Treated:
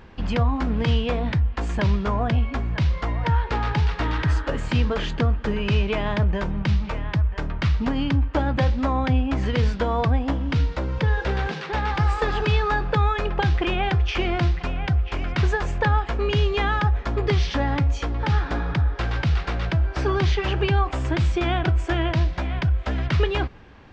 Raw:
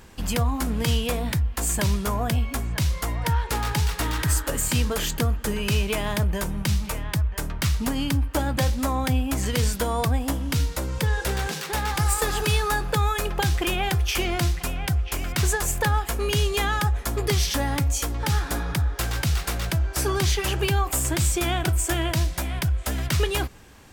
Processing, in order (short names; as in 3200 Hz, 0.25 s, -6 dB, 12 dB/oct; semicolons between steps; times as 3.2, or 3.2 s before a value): Gaussian blur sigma 2.3 samples; gain +2.5 dB